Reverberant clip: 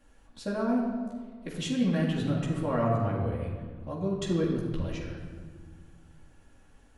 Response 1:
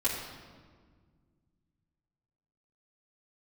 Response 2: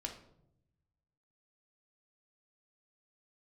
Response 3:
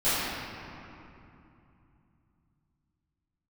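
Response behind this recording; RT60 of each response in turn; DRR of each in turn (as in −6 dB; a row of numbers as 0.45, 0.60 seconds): 1; 1.7, 0.75, 2.9 seconds; −8.5, 1.0, −18.0 decibels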